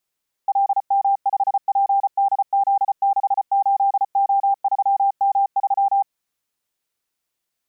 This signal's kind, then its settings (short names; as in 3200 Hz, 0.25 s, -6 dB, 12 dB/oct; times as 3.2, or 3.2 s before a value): Morse "LM5PDZ68O3M3" 34 wpm 793 Hz -14 dBFS